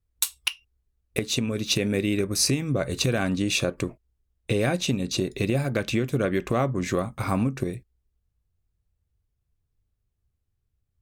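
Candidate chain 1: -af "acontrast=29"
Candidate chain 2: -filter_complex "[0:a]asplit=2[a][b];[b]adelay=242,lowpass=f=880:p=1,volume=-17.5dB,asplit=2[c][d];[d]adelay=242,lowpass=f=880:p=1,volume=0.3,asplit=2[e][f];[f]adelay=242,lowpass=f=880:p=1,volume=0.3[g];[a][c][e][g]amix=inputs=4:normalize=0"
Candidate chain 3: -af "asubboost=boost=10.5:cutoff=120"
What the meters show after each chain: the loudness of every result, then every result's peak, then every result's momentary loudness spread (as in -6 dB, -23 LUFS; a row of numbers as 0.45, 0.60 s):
-21.0, -26.0, -20.5 LUFS; -4.0, -7.0, -4.0 dBFS; 9, 9, 10 LU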